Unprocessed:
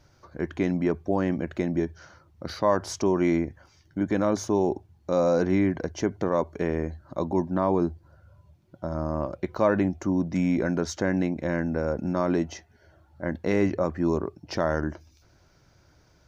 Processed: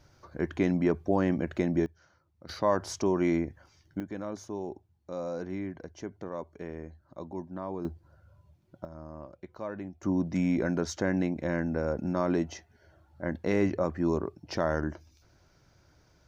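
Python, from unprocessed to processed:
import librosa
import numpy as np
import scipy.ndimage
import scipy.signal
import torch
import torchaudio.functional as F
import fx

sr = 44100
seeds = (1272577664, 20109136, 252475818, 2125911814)

y = fx.gain(x, sr, db=fx.steps((0.0, -1.0), (1.86, -14.0), (2.49, -3.5), (4.0, -13.0), (7.85, -4.5), (8.85, -15.5), (10.03, -3.0)))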